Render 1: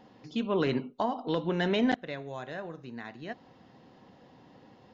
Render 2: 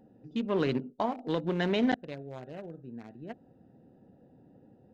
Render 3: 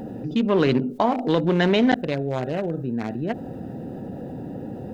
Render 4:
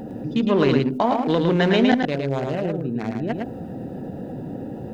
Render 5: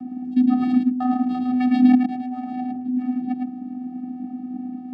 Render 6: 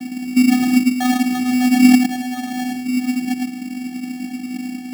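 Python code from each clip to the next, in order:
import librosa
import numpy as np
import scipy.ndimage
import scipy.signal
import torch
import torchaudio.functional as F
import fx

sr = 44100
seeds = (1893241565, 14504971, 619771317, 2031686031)

y1 = fx.wiener(x, sr, points=41)
y2 = fx.env_flatten(y1, sr, amount_pct=50)
y2 = y2 * 10.0 ** (7.0 / 20.0)
y3 = y2 + 10.0 ** (-4.0 / 20.0) * np.pad(y2, (int(109 * sr / 1000.0), 0))[:len(y2)]
y4 = fx.vocoder(y3, sr, bands=8, carrier='square', carrier_hz=251.0)
y4 = y4 * 10.0 ** (1.5 / 20.0)
y5 = fx.sample_hold(y4, sr, seeds[0], rate_hz=2500.0, jitter_pct=0)
y5 = y5 * 10.0 ** (4.0 / 20.0)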